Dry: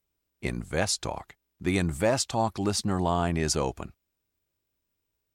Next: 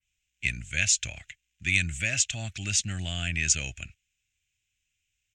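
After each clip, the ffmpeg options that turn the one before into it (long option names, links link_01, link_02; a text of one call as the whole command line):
ffmpeg -i in.wav -filter_complex "[0:a]firequalizer=gain_entry='entry(110,0);entry(150,-7);entry(430,-23);entry(620,-13);entry(990,-30);entry(1500,-1);entry(2600,15);entry(4500,-2);entry(6800,13);entry(11000,-14)':delay=0.05:min_phase=1,acrossover=split=410|1200|5100[link_01][link_02][link_03][link_04];[link_02]alimiter=level_in=15dB:limit=-24dB:level=0:latency=1,volume=-15dB[link_05];[link_01][link_05][link_03][link_04]amix=inputs=4:normalize=0,adynamicequalizer=threshold=0.0126:dfrequency=2700:dqfactor=0.7:tfrequency=2700:tqfactor=0.7:attack=5:release=100:ratio=0.375:range=2:mode=cutabove:tftype=highshelf" out.wav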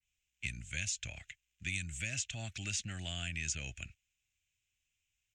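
ffmpeg -i in.wav -filter_complex "[0:a]acrossover=split=320|3000|6100[link_01][link_02][link_03][link_04];[link_01]acompressor=threshold=-36dB:ratio=4[link_05];[link_02]acompressor=threshold=-38dB:ratio=4[link_06];[link_03]acompressor=threshold=-38dB:ratio=4[link_07];[link_04]acompressor=threshold=-37dB:ratio=4[link_08];[link_05][link_06][link_07][link_08]amix=inputs=4:normalize=0,volume=-5dB" out.wav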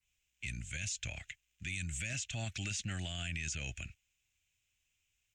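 ffmpeg -i in.wav -af "alimiter=level_in=9dB:limit=-24dB:level=0:latency=1:release=13,volume=-9dB,volume=3.5dB" out.wav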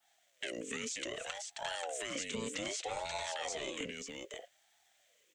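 ffmpeg -i in.wav -filter_complex "[0:a]acompressor=threshold=-47dB:ratio=5,asplit=2[link_01][link_02];[link_02]aecho=0:1:534:0.596[link_03];[link_01][link_03]amix=inputs=2:normalize=0,aeval=exprs='val(0)*sin(2*PI*550*n/s+550*0.4/0.63*sin(2*PI*0.63*n/s))':channel_layout=same,volume=11.5dB" out.wav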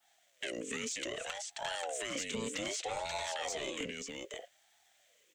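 ffmpeg -i in.wav -af "asoftclip=type=tanh:threshold=-27dB,volume=2dB" out.wav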